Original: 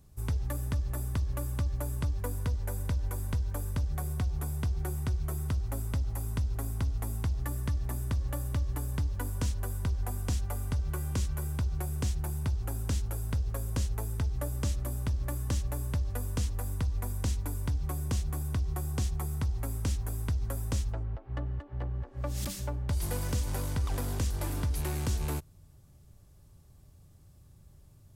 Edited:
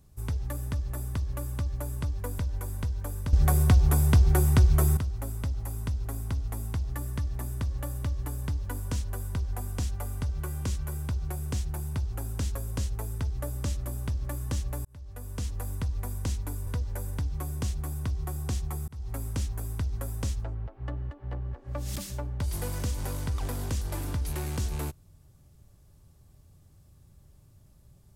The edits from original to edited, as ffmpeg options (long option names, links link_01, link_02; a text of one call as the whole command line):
ffmpeg -i in.wav -filter_complex "[0:a]asplit=9[link_01][link_02][link_03][link_04][link_05][link_06][link_07][link_08][link_09];[link_01]atrim=end=2.392[link_10];[link_02]atrim=start=2.888:end=3.832[link_11];[link_03]atrim=start=3.828:end=5.472,asetpts=PTS-STARTPTS,volume=11.5dB[link_12];[link_04]atrim=start=5.468:end=13.052[link_13];[link_05]atrim=start=13.538:end=15.84,asetpts=PTS-STARTPTS,afade=type=out:start_time=2.298:duration=0.004:curve=hsin[link_14];[link_06]atrim=start=15.84:end=17.662,asetpts=PTS-STARTPTS,afade=type=in:duration=0.75[link_15];[link_07]atrim=start=2.388:end=2.892[link_16];[link_08]atrim=start=17.658:end=19.37,asetpts=PTS-STARTPTS,afade=type=out:start_time=1.708:duration=0.004:curve=hsin[link_17];[link_09]atrim=start=19.37,asetpts=PTS-STARTPTS,afade=type=in:duration=0.26[link_18];[link_10][link_11]acrossfade=duration=0.004:curve1=hsin:curve2=hsin[link_19];[link_19][link_12]acrossfade=duration=0.004:curve1=hsin:curve2=hsin[link_20];[link_20][link_13]acrossfade=duration=0.004:curve1=hsin:curve2=hsin[link_21];[link_14][link_15]concat=n=2:v=0:a=1[link_22];[link_21][link_22]acrossfade=duration=0.004:curve1=hsin:curve2=hsin[link_23];[link_23][link_16]acrossfade=duration=0.004:curve1=hsin:curve2=hsin[link_24];[link_17][link_18]concat=n=2:v=0:a=1[link_25];[link_24][link_25]acrossfade=duration=0.004:curve1=hsin:curve2=hsin" out.wav